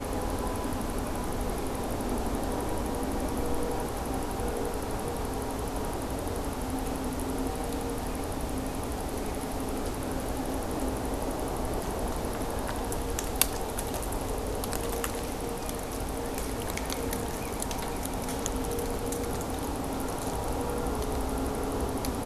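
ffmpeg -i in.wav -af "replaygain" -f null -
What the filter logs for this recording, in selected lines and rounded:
track_gain = +16.8 dB
track_peak = 0.537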